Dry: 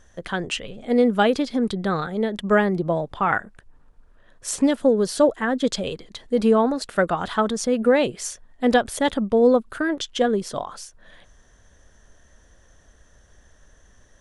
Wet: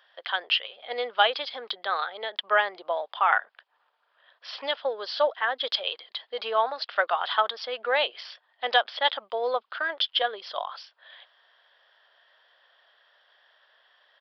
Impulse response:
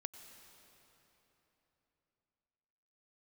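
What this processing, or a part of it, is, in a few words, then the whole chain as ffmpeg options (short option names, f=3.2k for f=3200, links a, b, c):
musical greeting card: -af "aresample=11025,aresample=44100,highpass=f=680:w=0.5412,highpass=f=680:w=1.3066,equalizer=f=3.2k:t=o:w=0.35:g=8"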